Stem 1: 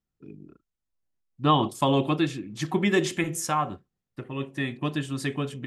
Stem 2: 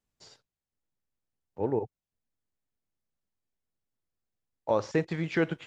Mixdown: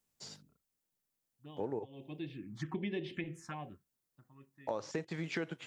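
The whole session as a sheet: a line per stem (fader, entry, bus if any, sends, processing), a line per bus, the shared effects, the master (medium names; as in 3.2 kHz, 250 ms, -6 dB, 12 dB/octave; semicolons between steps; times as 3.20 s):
-5.0 dB, 0.00 s, no send, low-pass 3.6 kHz 12 dB/octave; touch-sensitive phaser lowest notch 300 Hz, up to 1.3 kHz, full sweep at -22 dBFS; auto duck -24 dB, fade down 1.55 s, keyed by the second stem
+0.5 dB, 0.00 s, no send, high-pass 120 Hz; treble shelf 6.3 kHz +11 dB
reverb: none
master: compression 4:1, threshold -36 dBFS, peak gain reduction 13.5 dB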